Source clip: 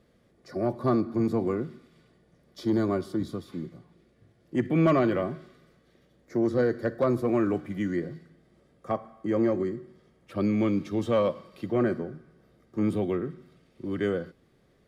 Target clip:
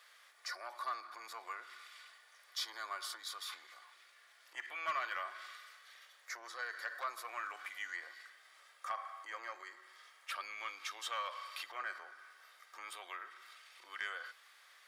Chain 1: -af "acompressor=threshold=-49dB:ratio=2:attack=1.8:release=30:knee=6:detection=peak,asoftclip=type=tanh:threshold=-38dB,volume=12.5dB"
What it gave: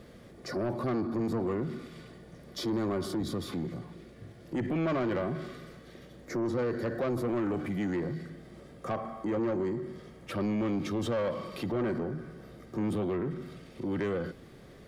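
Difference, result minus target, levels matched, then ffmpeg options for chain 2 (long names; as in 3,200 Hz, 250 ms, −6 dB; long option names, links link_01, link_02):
1,000 Hz band −8.5 dB
-af "acompressor=threshold=-49dB:ratio=2:attack=1.8:release=30:knee=6:detection=peak,highpass=frequency=1100:width=0.5412,highpass=frequency=1100:width=1.3066,asoftclip=type=tanh:threshold=-38dB,volume=12.5dB"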